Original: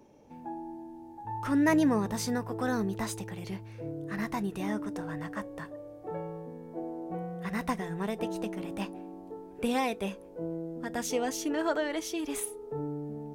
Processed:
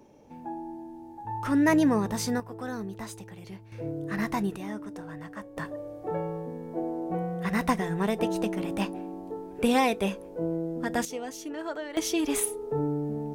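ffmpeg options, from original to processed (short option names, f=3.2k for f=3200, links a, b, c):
-af "asetnsamples=n=441:p=0,asendcmd='2.4 volume volume -5dB;3.72 volume volume 4dB;4.56 volume volume -3.5dB;5.57 volume volume 6dB;11.05 volume volume -5.5dB;11.97 volume volume 7dB',volume=2.5dB"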